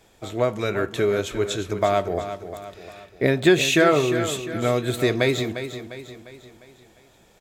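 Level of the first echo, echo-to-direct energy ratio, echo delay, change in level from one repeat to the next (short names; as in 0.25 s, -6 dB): -10.5 dB, -9.5 dB, 0.351 s, -6.5 dB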